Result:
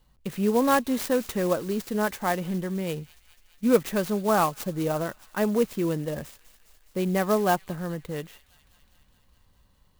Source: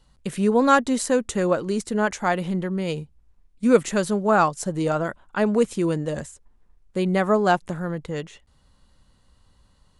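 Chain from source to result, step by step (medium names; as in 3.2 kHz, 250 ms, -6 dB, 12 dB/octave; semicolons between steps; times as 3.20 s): band-stop 1.4 kHz, Q 13; feedback echo behind a high-pass 207 ms, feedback 72%, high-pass 3.9 kHz, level -11 dB; sampling jitter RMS 0.036 ms; trim -3.5 dB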